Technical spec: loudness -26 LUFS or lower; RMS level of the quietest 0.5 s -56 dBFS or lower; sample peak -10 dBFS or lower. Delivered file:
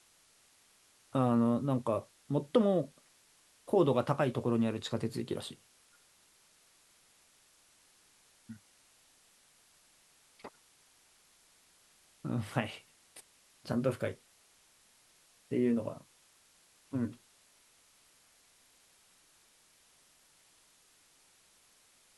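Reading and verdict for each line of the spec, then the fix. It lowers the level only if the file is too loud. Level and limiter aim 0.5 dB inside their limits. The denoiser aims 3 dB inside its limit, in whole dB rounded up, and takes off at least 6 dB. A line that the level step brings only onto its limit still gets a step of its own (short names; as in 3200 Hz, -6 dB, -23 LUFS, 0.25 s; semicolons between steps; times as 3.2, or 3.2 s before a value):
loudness -33.0 LUFS: OK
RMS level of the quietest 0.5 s -66 dBFS: OK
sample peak -13.5 dBFS: OK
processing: none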